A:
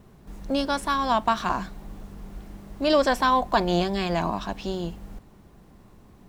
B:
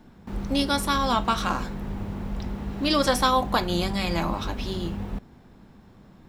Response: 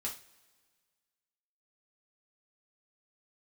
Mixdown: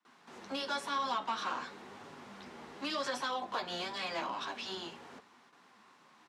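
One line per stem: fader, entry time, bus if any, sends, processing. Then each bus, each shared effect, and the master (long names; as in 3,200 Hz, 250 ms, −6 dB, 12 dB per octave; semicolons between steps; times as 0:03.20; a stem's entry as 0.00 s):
+2.5 dB, 0.00 s, no send, inverse Chebyshev high-pass filter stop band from 460 Hz, stop band 40 dB; downward compressor, threshold −33 dBFS, peak gain reduction 13.5 dB; soft clipping −39 dBFS, distortion −6 dB
−8.0 dB, 5.2 ms, polarity flipped, send −14.5 dB, multi-voice chorus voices 2, 0.95 Hz, delay 10 ms, depth 3 ms; brickwall limiter −18 dBFS, peak gain reduction 7 dB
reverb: on, pre-delay 3 ms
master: noise gate with hold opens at −49 dBFS; band-pass filter 360–5,800 Hz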